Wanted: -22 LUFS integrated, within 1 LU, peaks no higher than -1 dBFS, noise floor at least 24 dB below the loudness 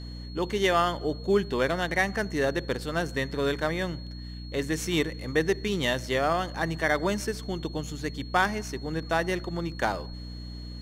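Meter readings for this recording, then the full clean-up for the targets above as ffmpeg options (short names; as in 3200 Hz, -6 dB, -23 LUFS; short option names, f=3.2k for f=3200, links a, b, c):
hum 60 Hz; harmonics up to 300 Hz; hum level -37 dBFS; steady tone 4300 Hz; tone level -47 dBFS; loudness -28.0 LUFS; peak -10.0 dBFS; loudness target -22.0 LUFS
-> -af "bandreject=f=60:t=h:w=6,bandreject=f=120:t=h:w=6,bandreject=f=180:t=h:w=6,bandreject=f=240:t=h:w=6,bandreject=f=300:t=h:w=6"
-af "bandreject=f=4.3k:w=30"
-af "volume=6dB"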